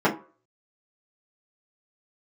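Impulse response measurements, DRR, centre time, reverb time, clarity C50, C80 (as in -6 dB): -8.0 dB, 16 ms, 0.40 s, 12.5 dB, 18.0 dB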